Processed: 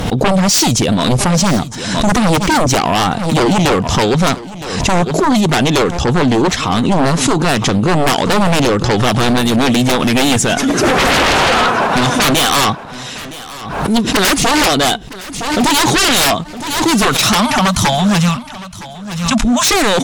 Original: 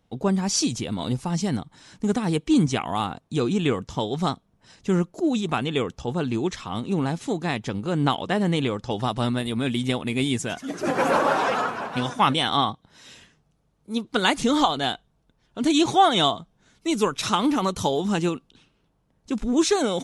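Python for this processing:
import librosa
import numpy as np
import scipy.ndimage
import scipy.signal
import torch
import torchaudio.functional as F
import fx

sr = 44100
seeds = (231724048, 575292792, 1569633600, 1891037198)

y = fx.cheby1_bandstop(x, sr, low_hz=240.0, high_hz=600.0, order=4, at=(17.29, 19.69))
y = fx.fold_sine(y, sr, drive_db=17, ceiling_db=-6.0)
y = fx.echo_feedback(y, sr, ms=964, feedback_pct=23, wet_db=-17)
y = fx.pre_swell(y, sr, db_per_s=51.0)
y = F.gain(torch.from_numpy(y), -2.5).numpy()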